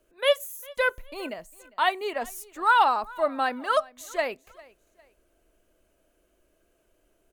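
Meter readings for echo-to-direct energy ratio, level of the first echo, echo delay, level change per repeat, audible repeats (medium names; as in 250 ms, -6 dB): -22.5 dB, -23.0 dB, 402 ms, -9.0 dB, 2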